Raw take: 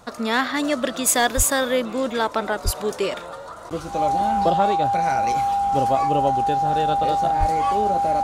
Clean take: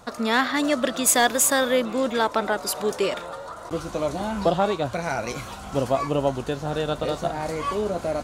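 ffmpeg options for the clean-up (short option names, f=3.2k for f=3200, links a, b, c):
-filter_complex "[0:a]bandreject=f=800:w=30,asplit=3[a][b][c];[a]afade=t=out:st=1.36:d=0.02[d];[b]highpass=f=140:w=0.5412,highpass=f=140:w=1.3066,afade=t=in:st=1.36:d=0.02,afade=t=out:st=1.48:d=0.02[e];[c]afade=t=in:st=1.48:d=0.02[f];[d][e][f]amix=inputs=3:normalize=0,asplit=3[g][h][i];[g]afade=t=out:st=2.64:d=0.02[j];[h]highpass=f=140:w=0.5412,highpass=f=140:w=1.3066,afade=t=in:st=2.64:d=0.02,afade=t=out:st=2.76:d=0.02[k];[i]afade=t=in:st=2.76:d=0.02[l];[j][k][l]amix=inputs=3:normalize=0,asplit=3[m][n][o];[m]afade=t=out:st=7.39:d=0.02[p];[n]highpass=f=140:w=0.5412,highpass=f=140:w=1.3066,afade=t=in:st=7.39:d=0.02,afade=t=out:st=7.51:d=0.02[q];[o]afade=t=in:st=7.51:d=0.02[r];[p][q][r]amix=inputs=3:normalize=0"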